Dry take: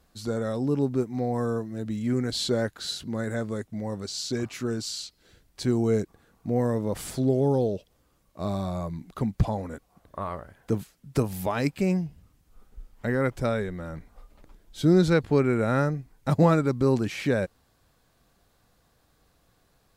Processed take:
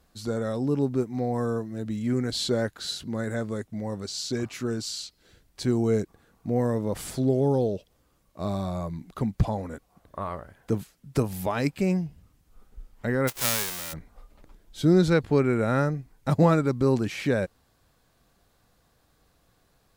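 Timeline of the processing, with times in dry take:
13.27–13.92 s: formants flattened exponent 0.1

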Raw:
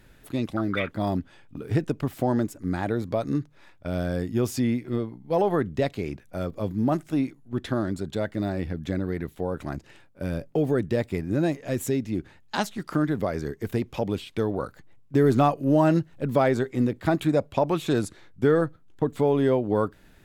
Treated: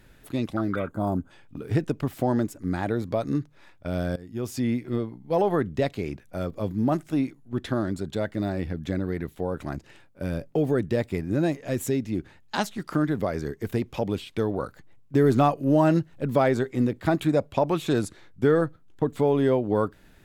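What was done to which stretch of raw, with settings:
0.76–1.31 s: time-frequency box 1.6–6.3 kHz -14 dB
4.16–4.76 s: fade in, from -20 dB

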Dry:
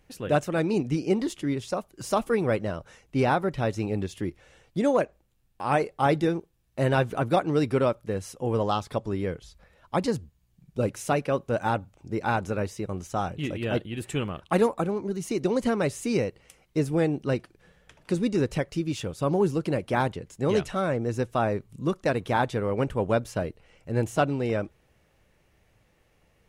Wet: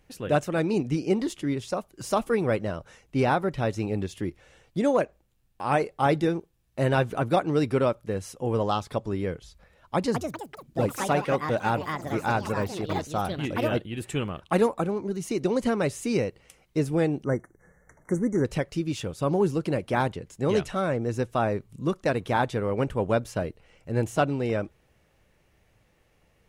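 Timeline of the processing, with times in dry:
9.95–14.78 s: ever faster or slower copies 194 ms, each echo +5 st, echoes 3, each echo -6 dB
17.24–18.45 s: brick-wall FIR band-stop 2.2–5.7 kHz

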